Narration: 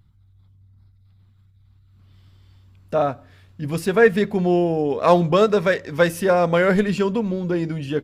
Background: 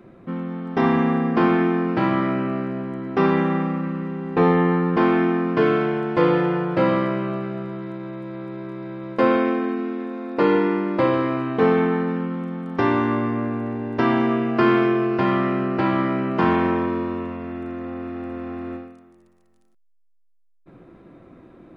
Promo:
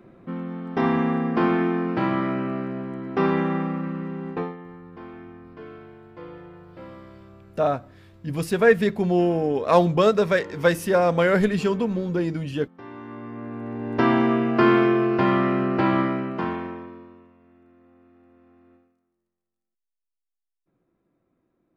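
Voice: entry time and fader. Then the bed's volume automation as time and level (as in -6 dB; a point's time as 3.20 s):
4.65 s, -2.0 dB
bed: 4.30 s -3 dB
4.57 s -23 dB
12.79 s -23 dB
13.96 s 0 dB
15.99 s 0 dB
17.33 s -25 dB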